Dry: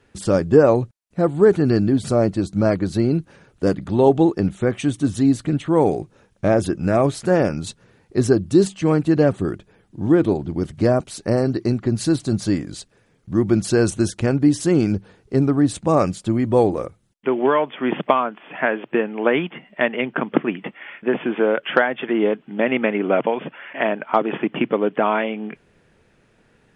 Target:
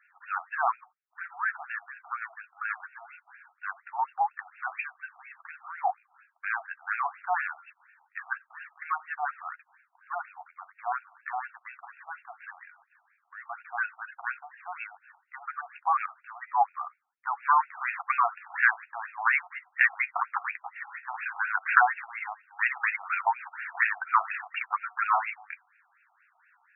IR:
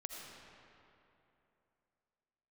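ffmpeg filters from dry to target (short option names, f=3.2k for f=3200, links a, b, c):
-filter_complex "[0:a]asplit=2[a][b];[1:a]atrim=start_sample=2205,atrim=end_sample=3528,adelay=11[c];[b][c]afir=irnorm=-1:irlink=0,volume=-5dB[d];[a][d]amix=inputs=2:normalize=0,afftfilt=real='re*between(b*sr/1024,940*pow(2000/940,0.5+0.5*sin(2*PI*4.2*pts/sr))/1.41,940*pow(2000/940,0.5+0.5*sin(2*PI*4.2*pts/sr))*1.41)':imag='im*between(b*sr/1024,940*pow(2000/940,0.5+0.5*sin(2*PI*4.2*pts/sr))/1.41,940*pow(2000/940,0.5+0.5*sin(2*PI*4.2*pts/sr))*1.41)':win_size=1024:overlap=0.75,volume=2dB"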